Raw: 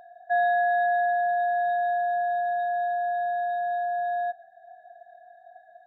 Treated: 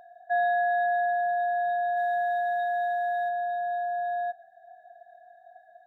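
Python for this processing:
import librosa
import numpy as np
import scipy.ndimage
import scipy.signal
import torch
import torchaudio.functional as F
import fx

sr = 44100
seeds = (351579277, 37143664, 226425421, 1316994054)

y = fx.high_shelf(x, sr, hz=2100.0, db=9.5, at=(1.96, 3.28), fade=0.02)
y = y * librosa.db_to_amplitude(-2.0)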